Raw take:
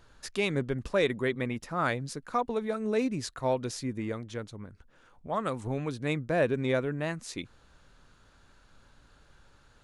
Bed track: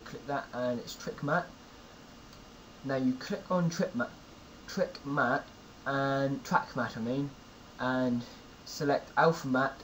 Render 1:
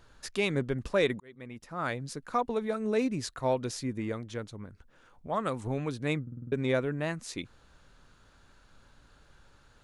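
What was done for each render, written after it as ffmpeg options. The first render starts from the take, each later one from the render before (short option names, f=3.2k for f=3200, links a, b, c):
-filter_complex "[0:a]asplit=8[a][b][c][d][e][f][g][h];[a]atrim=end=1.2,asetpts=PTS-STARTPTS,afade=t=out:st=1.196:d=0.004:c=hsin[i];[b]atrim=start=1.2:end=6.272,asetpts=PTS-STARTPTS,afade=t=in:d=1.07[j];[c]atrim=start=6.218:end=6.272[k];[d]atrim=start=6.218:end=6.272[l];[e]atrim=start=6.218:end=6.272[m];[f]atrim=start=6.218:end=6.272[n];[g]atrim=start=6.218:end=6.272[o];[h]atrim=start=6.518[p];[i][j]concat=n=2:v=0:a=1[q];[q][k]acrossfade=d=0.004:c1=hsin:c2=hsin[r];[r][l]acrossfade=d=0.004:c1=hsin:c2=hsin[s];[s][m]acrossfade=d=0.004:c1=hsin:c2=hsin[t];[t][n]acrossfade=d=0.004:c1=hsin:c2=hsin[u];[u][o]acrossfade=d=0.004:c1=hsin:c2=hsin[v];[v][p]acrossfade=d=0.004:c1=hsin:c2=hsin"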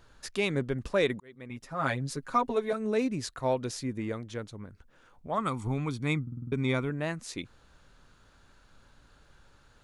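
-filter_complex "[0:a]asettb=1/sr,asplit=3[a][b][c];[a]atrim=end=1.494[d];[b]atrim=start=1.49:end=2.73,asetpts=PTS-STARTPTS,afade=t=in:d=0.004:c=qsin,afade=t=out:st=1.236:d=0.004:c=qsin,aecho=1:1:7.4:0.96,atrim=end_sample=54684[e];[c]atrim=start=2.726[f];[d][e]acrossfade=d=0.004:c1=hsin:c2=qsin[g];[g][f]acrossfade=d=0.004:c1=qsin:c2=hsin,asettb=1/sr,asplit=3[h][i][j];[h]atrim=end=5.384[k];[i]atrim=start=5.38:end=6.9,asetpts=PTS-STARTPTS,afade=t=in:d=0.004:c=qsin,afade=t=out:st=1.516:d=0.004:c=qsin,aecho=1:1:0.9:0.57,atrim=end_sample=67032[l];[j]atrim=start=6.896[m];[k][l]acrossfade=d=0.004:c1=hsin:c2=qsin[n];[n][m]acrossfade=d=0.004:c1=qsin:c2=hsin"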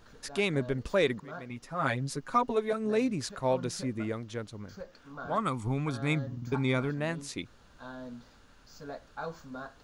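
-filter_complex "[1:a]volume=-13.5dB[a];[0:a][a]amix=inputs=2:normalize=0"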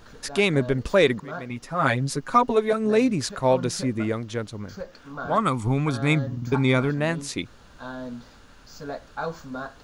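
-af "volume=8dB"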